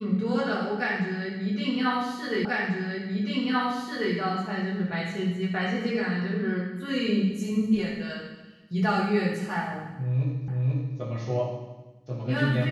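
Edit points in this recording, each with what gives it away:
2.45 repeat of the last 1.69 s
10.48 repeat of the last 0.49 s

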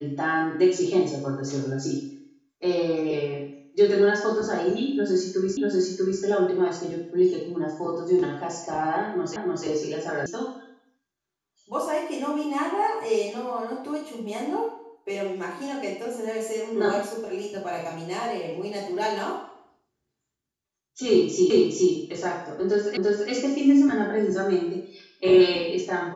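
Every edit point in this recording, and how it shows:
5.57 repeat of the last 0.64 s
9.36 repeat of the last 0.3 s
10.26 sound cut off
21.5 repeat of the last 0.42 s
22.97 repeat of the last 0.34 s

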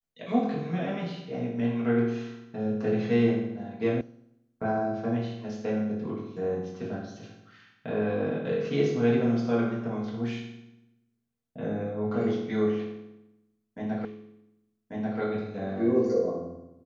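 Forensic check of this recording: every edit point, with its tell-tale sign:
4.01 sound cut off
14.05 repeat of the last 1.14 s

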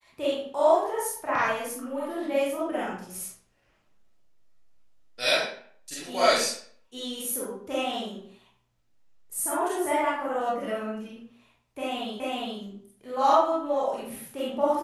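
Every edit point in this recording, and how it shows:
12.2 repeat of the last 0.41 s

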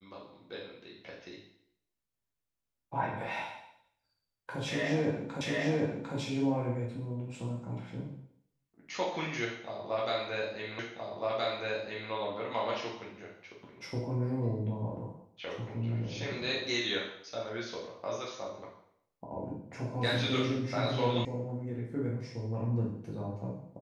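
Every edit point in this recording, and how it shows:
5.41 repeat of the last 0.75 s
10.79 repeat of the last 1.32 s
21.25 sound cut off

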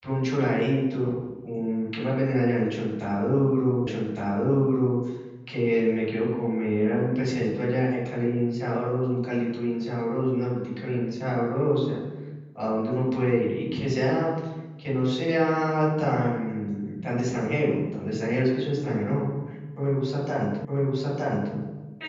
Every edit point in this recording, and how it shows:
3.87 repeat of the last 1.16 s
20.65 repeat of the last 0.91 s

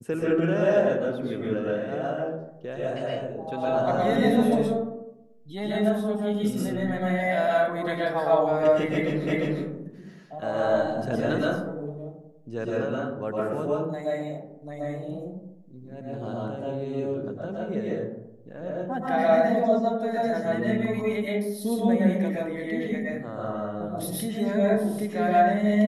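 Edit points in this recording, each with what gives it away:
9.27 repeat of the last 0.35 s

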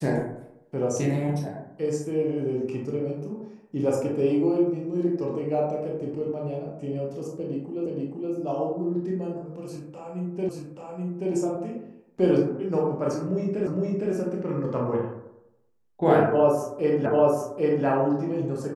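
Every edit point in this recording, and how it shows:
7.86 repeat of the last 0.47 s
10.49 repeat of the last 0.83 s
13.67 repeat of the last 0.46 s
17.06 repeat of the last 0.79 s

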